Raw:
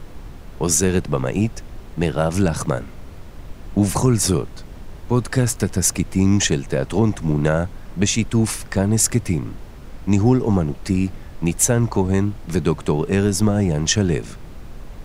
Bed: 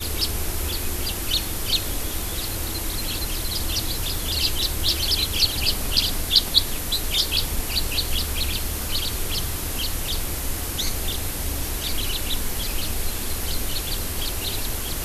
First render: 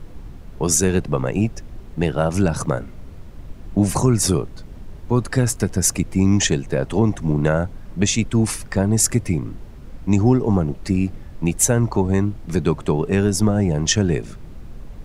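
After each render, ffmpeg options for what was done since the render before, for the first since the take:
-af "afftdn=nr=6:nf=-38"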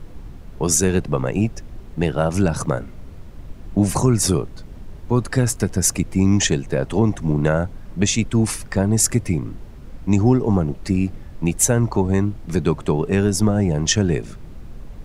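-af anull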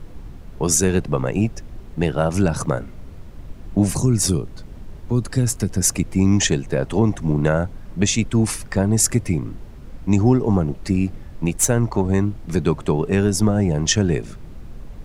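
-filter_complex "[0:a]asettb=1/sr,asplit=3[a][b][c];[a]atrim=end=3.914[d];[b]atrim=start=3.91:end=5.81,asetpts=PTS-STARTPTS,afade=t=in:d=0.004:c=qsin,afade=t=out:st=1.896:d=0.004:c=qsin,acrossover=split=370|3000[e][f][g];[f]acompressor=threshold=-36dB:ratio=3:attack=3.2:release=140:knee=2.83:detection=peak[h];[e][h][g]amix=inputs=3:normalize=0[i];[c]atrim=start=5.806[j];[d][i]acrossfade=d=0.004:c1=hsin:c2=qsin[k];[k][j]acrossfade=d=0.004:c1=qsin:c2=hsin,asettb=1/sr,asplit=3[l][m][n];[l]atrim=end=11.454[o];[m]atrim=start=11.45:end=12.06,asetpts=PTS-STARTPTS,afade=t=in:d=0.004:c=qsin,afade=t=out:st=0.606:d=0.004:c=qsin,aeval=exprs='if(lt(val(0),0),0.708*val(0),val(0))':c=same[p];[n]atrim=start=12.056[q];[o][p]acrossfade=d=0.004:c1=hsin:c2=qsin[r];[r][q]acrossfade=d=0.004:c1=qsin:c2=hsin"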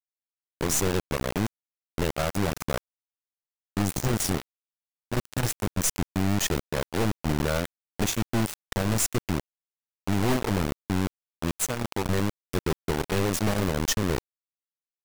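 -af "aeval=exprs='val(0)*gte(abs(val(0)),0.126)':c=same,aeval=exprs='(tanh(10*val(0)+0.5)-tanh(0.5))/10':c=same"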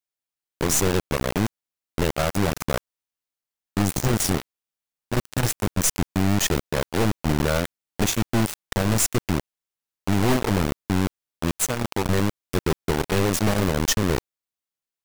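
-af "volume=4dB"

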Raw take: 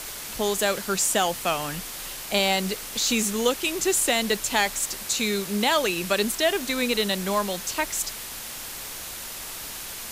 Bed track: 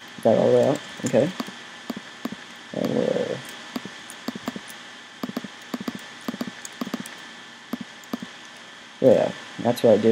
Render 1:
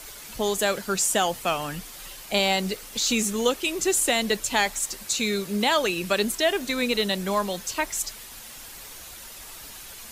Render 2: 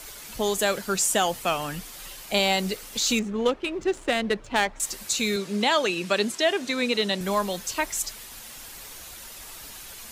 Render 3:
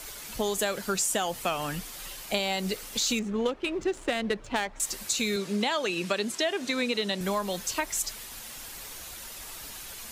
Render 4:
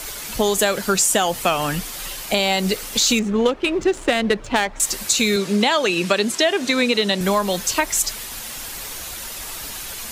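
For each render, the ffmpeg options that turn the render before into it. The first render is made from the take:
-af "afftdn=nr=8:nf=-37"
-filter_complex "[0:a]asettb=1/sr,asplit=3[a][b][c];[a]atrim=end=3.194[d];[b]atrim=start=3.19:end=4.8,asetpts=PTS-STARTPTS,afade=t=in:d=0.004:c=qsin,afade=t=out:st=1.606:d=0.004:c=qsin,adynamicsmooth=sensitivity=1:basefreq=1.4k[e];[c]atrim=start=4.796[f];[d][e]acrossfade=d=0.004:c1=hsin:c2=qsin[g];[g][f]acrossfade=d=0.004:c1=qsin:c2=hsin,asettb=1/sr,asplit=3[h][i][j];[h]atrim=end=5.364[k];[i]atrim=start=5.36:end=7.21,asetpts=PTS-STARTPTS,afade=t=in:d=0.004:c=qsin,afade=t=out:st=1.846:d=0.004:c=qsin,highpass=140,lowpass=7.8k[l];[j]atrim=start=7.206[m];[k][l]acrossfade=d=0.004:c1=hsin:c2=qsin[n];[n][m]acrossfade=d=0.004:c1=qsin:c2=hsin"
-af "acompressor=threshold=-24dB:ratio=6"
-af "volume=10dB,alimiter=limit=-3dB:level=0:latency=1"

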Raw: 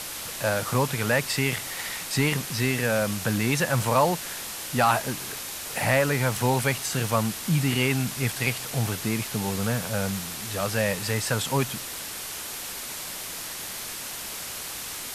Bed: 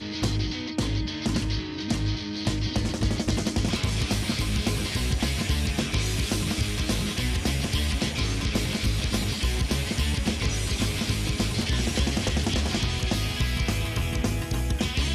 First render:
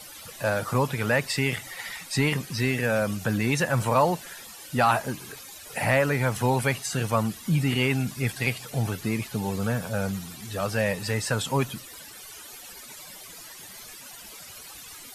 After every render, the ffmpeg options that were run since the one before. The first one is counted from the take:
-af "afftdn=nr=15:nf=-36"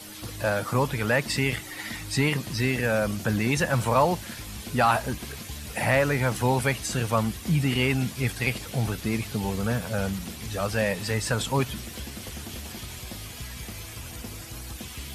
-filter_complex "[1:a]volume=-13.5dB[a];[0:a][a]amix=inputs=2:normalize=0"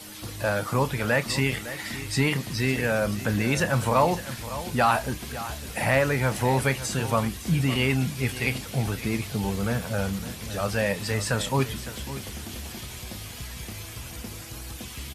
-filter_complex "[0:a]asplit=2[a][b];[b]adelay=30,volume=-13.5dB[c];[a][c]amix=inputs=2:normalize=0,aecho=1:1:558:0.2"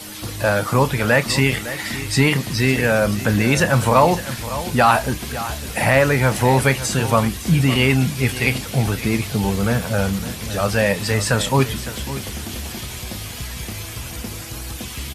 -af "volume=7.5dB,alimiter=limit=-2dB:level=0:latency=1"

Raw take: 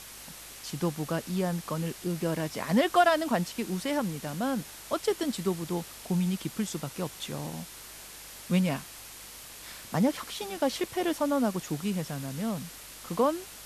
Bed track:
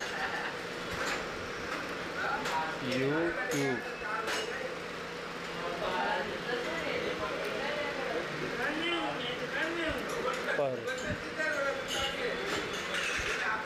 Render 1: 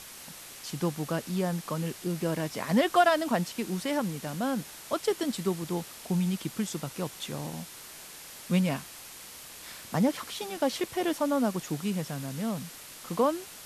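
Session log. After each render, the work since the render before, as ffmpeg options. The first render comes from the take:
-af "bandreject=f=50:t=h:w=4,bandreject=f=100:t=h:w=4"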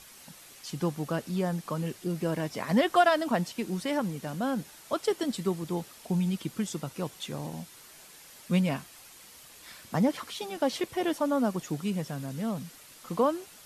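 -af "afftdn=nr=7:nf=-46"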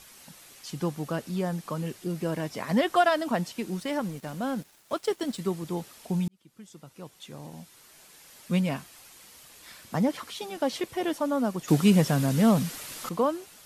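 -filter_complex "[0:a]asettb=1/sr,asplit=3[a][b][c];[a]atrim=end=3.774[d];[b]atrim=start=3.77:end=5.4,asetpts=PTS-STARTPTS,afade=t=in:d=0.004:c=qsin,afade=t=out:st=1.626:d=0.004:c=qsin,aeval=exprs='sgn(val(0))*max(abs(val(0))-0.00282,0)':c=same[e];[c]atrim=start=5.396[f];[d][e]acrossfade=d=0.004:c1=hsin:c2=qsin[g];[g][f]acrossfade=d=0.004:c1=qsin:c2=hsin,asplit=4[h][i][j][k];[h]atrim=end=6.28,asetpts=PTS-STARTPTS,afade=t=out:st=6.276:d=0.004:c=hsin[l];[i]atrim=start=6.28:end=11.682,asetpts=PTS-STARTPTS,afade=t=in:d=2.23[m];[j]atrim=start=11.678:end=13.092,asetpts=PTS-STARTPTS,volume=11.5dB[n];[k]atrim=start=13.088[o];[l][m]concat=n=2:v=0:a=1[p];[p][n]acrossfade=d=0.004:c1=hsin:c2=hsin[q];[q][o]acrossfade=d=0.004:c1=hsin:c2=hsin"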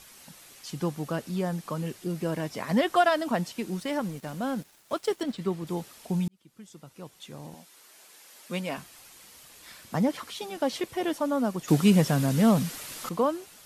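-filter_complex "[0:a]asettb=1/sr,asplit=3[a][b][c];[a]atrim=end=5.234[d];[b]atrim=start=5.23:end=5.67,asetpts=PTS-STARTPTS,afade=t=in:d=0.004:c=qsin,afade=t=out:st=0.436:d=0.004:c=qsin,acrossover=split=4400[e][f];[f]acompressor=threshold=-57dB:ratio=4:attack=1:release=60[g];[e][g]amix=inputs=2:normalize=0[h];[c]atrim=start=5.666[i];[d][h]acrossfade=d=0.004:c1=hsin:c2=qsin[j];[j][i]acrossfade=d=0.004:c1=qsin:c2=hsin,asettb=1/sr,asplit=3[k][l][m];[k]atrim=end=7.544[n];[l]atrim=start=7.54:end=8.78,asetpts=PTS-STARTPTS,afade=t=in:d=0.004:c=qsin,afade=t=out:st=1.236:d=0.004:c=qsin,highpass=310[o];[m]atrim=start=8.776[p];[n][o]acrossfade=d=0.004:c1=hsin:c2=qsin[q];[q][p]acrossfade=d=0.004:c1=qsin:c2=hsin"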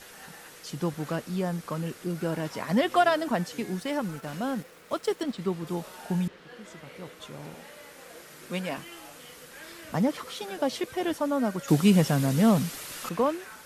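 -filter_complex "[1:a]volume=-14dB[a];[0:a][a]amix=inputs=2:normalize=0"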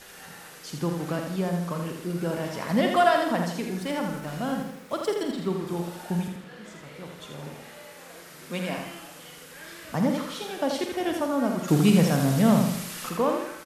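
-filter_complex "[0:a]asplit=2[a][b];[b]adelay=47,volume=-8.5dB[c];[a][c]amix=inputs=2:normalize=0,aecho=1:1:81|162|243|324|405|486:0.531|0.244|0.112|0.0517|0.0238|0.0109"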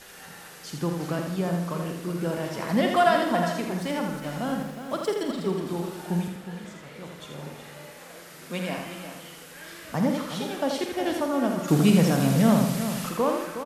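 -af "aecho=1:1:365:0.316"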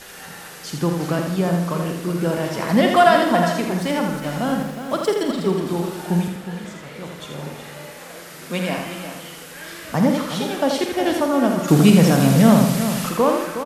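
-af "volume=7dB,alimiter=limit=-2dB:level=0:latency=1"

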